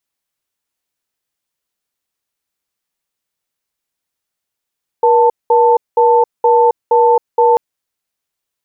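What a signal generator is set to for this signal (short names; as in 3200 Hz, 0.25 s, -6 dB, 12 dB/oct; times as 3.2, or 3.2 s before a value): cadence 477 Hz, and 887 Hz, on 0.27 s, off 0.20 s, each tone -9.5 dBFS 2.54 s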